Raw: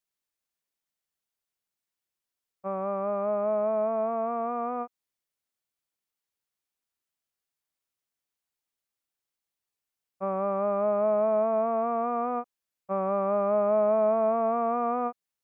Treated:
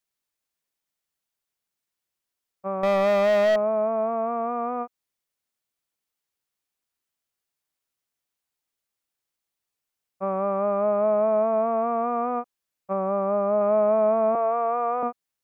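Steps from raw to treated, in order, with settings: 2.83–3.56 sample leveller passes 3; 12.93–13.61 high shelf 2100 Hz -8.5 dB; 14.35–15.03 HPF 340 Hz 24 dB/oct; gain +3 dB

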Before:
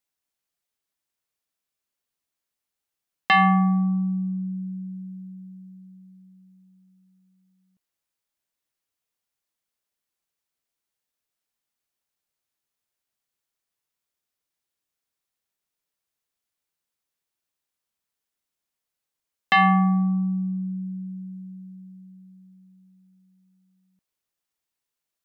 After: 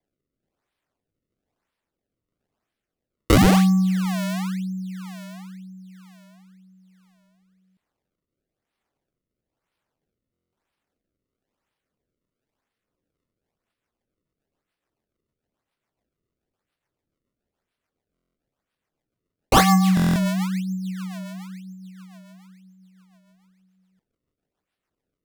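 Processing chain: decimation with a swept rate 31×, swing 160% 1 Hz; rotary speaker horn 1.1 Hz, later 7 Hz, at 12.94; stuck buffer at 10.32/18.14/19.95, samples 1024, times 8; gain +4 dB

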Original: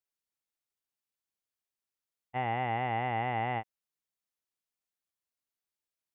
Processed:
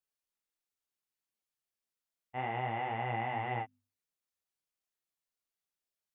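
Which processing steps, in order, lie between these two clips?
notches 50/100/150/200/250 Hz; in parallel at -3 dB: limiter -27 dBFS, peak gain reduction 7.5 dB; on the sum: chorus voices 4, 1 Hz, delay 29 ms, depth 3.3 ms; gain -3 dB

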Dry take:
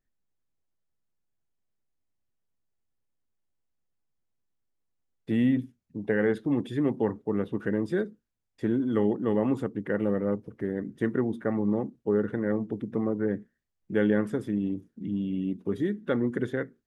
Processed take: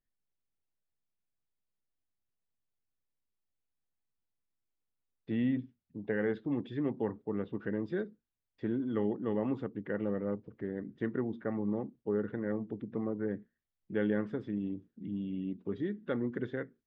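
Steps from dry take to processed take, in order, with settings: LPF 4400 Hz 24 dB/oct; gain -7 dB

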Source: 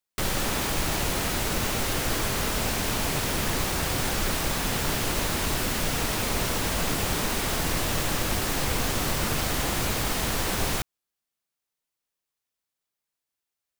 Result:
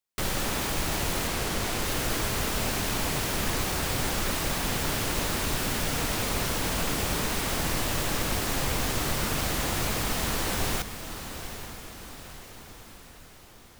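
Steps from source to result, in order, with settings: diffused feedback echo 0.854 s, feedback 54%, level -10.5 dB; 1.27–1.85 Doppler distortion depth 0.92 ms; gain -2 dB

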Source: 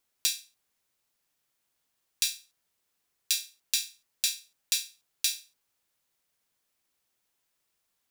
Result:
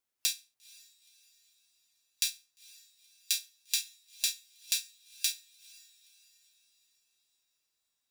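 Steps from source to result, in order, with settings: diffused feedback echo 0.473 s, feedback 47%, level -16 dB; spectral noise reduction 6 dB; gain -2.5 dB

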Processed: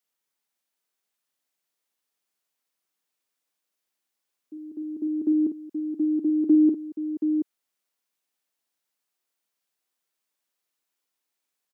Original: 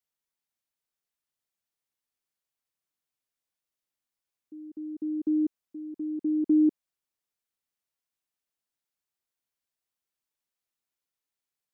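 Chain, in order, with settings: HPF 210 Hz; tapped delay 51/727 ms -8/-8 dB; gain +5.5 dB

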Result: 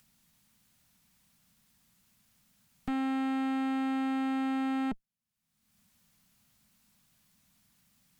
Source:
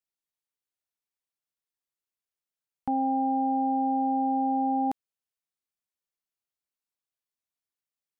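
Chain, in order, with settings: resonant low shelf 280 Hz +10.5 dB, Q 3; one-sided clip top -40.5 dBFS, bottom -24 dBFS; upward compressor, threshold -47 dBFS; gain -1.5 dB

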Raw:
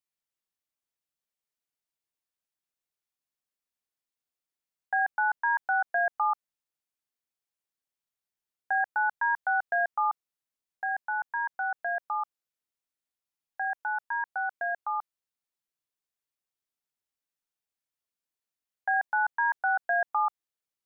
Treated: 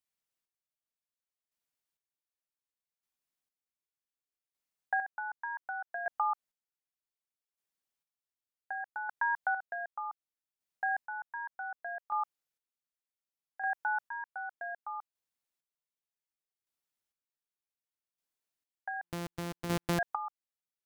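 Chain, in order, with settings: 19.03–19.99 sample sorter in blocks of 256 samples; compressor, threshold -27 dBFS, peak gain reduction 5 dB; chopper 0.66 Hz, depth 60%, duty 30%

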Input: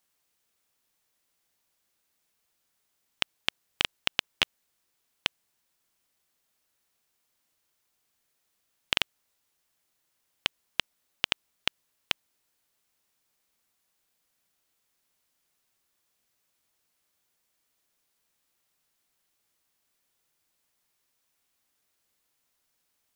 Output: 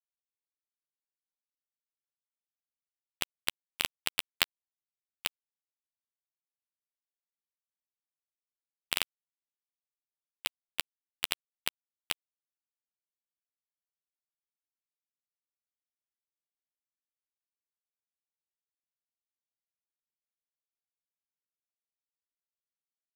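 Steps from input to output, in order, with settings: per-bin expansion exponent 3; companded quantiser 2-bit; gain -6 dB

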